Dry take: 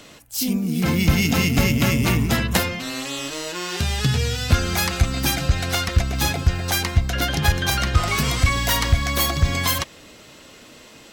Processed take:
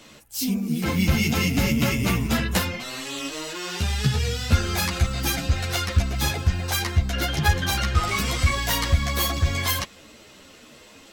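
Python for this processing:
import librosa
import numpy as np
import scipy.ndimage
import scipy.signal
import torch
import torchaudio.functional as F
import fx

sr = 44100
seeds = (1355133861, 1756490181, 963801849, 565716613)

y = fx.ensemble(x, sr)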